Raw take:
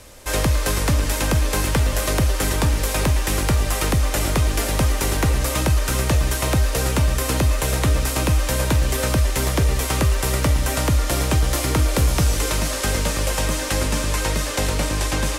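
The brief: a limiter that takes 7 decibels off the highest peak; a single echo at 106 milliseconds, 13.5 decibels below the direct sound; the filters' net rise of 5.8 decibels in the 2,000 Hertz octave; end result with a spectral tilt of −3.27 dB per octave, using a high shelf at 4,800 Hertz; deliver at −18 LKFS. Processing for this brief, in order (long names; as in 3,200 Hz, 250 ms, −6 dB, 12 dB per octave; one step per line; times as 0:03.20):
parametric band 2,000 Hz +6 dB
high-shelf EQ 4,800 Hz +7 dB
brickwall limiter −10.5 dBFS
single-tap delay 106 ms −13.5 dB
level +1.5 dB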